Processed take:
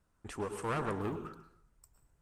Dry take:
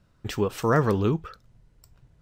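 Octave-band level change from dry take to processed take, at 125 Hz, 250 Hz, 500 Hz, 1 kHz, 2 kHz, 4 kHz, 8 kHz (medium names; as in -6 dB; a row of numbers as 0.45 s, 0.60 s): -15.5 dB, -13.5 dB, -13.0 dB, -9.5 dB, -10.5 dB, -13.0 dB, -8.0 dB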